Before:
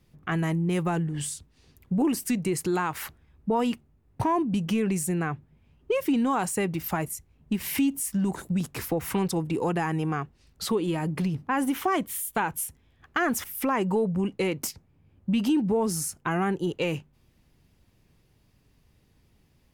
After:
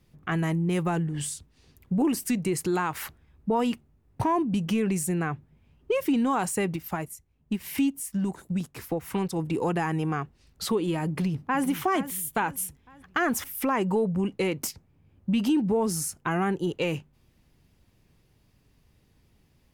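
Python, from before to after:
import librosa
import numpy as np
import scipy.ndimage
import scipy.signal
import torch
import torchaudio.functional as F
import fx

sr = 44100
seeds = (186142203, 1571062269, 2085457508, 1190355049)

y = fx.upward_expand(x, sr, threshold_db=-38.0, expansion=1.5, at=(6.76, 9.39))
y = fx.echo_throw(y, sr, start_s=11.08, length_s=0.56, ms=460, feedback_pct=45, wet_db=-13.0)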